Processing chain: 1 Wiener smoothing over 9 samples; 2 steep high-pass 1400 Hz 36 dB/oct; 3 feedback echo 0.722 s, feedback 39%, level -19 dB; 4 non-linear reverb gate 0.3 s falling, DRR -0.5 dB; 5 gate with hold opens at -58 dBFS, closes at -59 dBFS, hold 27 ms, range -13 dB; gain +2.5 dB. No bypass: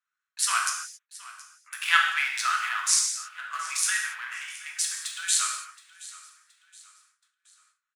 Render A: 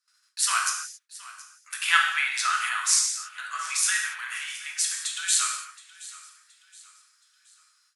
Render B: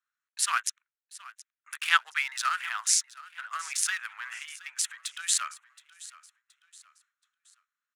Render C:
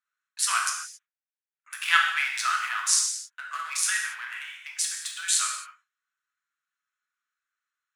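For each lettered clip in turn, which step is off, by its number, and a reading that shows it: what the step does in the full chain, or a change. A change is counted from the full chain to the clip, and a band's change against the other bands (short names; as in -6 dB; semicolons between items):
1, loudness change +1.0 LU; 4, crest factor change +1.5 dB; 3, momentary loudness spread change -7 LU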